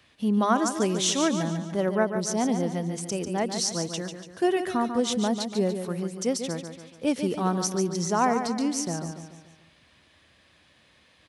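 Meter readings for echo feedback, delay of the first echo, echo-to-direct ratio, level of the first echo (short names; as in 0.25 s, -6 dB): 47%, 0.144 s, -7.0 dB, -8.0 dB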